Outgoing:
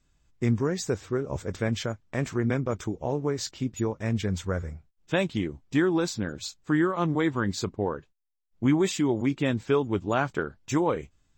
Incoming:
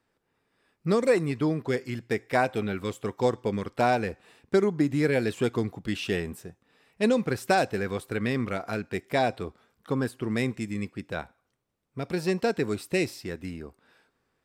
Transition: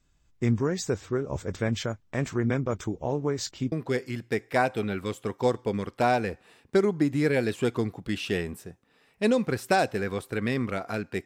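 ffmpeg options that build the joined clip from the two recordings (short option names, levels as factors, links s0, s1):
-filter_complex "[0:a]apad=whole_dur=11.25,atrim=end=11.25,atrim=end=3.722[s0];[1:a]atrim=start=1.508:end=9.04[s1];[s0][s1]acrossfade=d=0.004:c1=hsin:c2=hsin"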